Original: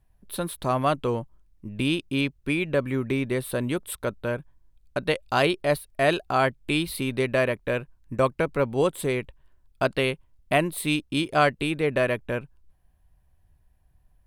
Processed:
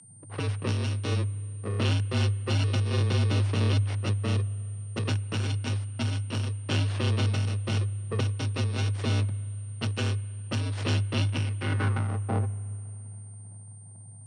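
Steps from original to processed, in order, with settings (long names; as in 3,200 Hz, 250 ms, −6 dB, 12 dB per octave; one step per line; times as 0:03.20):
samples in bit-reversed order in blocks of 64 samples
low-pass that shuts in the quiet parts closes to 650 Hz, open at −19 dBFS
high-shelf EQ 9,400 Hz +6.5 dB
downward compressor 6 to 1, threshold −30 dBFS, peak gain reduction 16 dB
low-pass filter sweep 3,700 Hz → 670 Hz, 0:11.21–0:12.24
full-wave rectification
steady tone 8,800 Hz −39 dBFS
high-frequency loss of the air 150 metres
spring reverb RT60 3.5 s, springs 35/50 ms, chirp 40 ms, DRR 19.5 dB
frequency shifter +100 Hz
level +7.5 dB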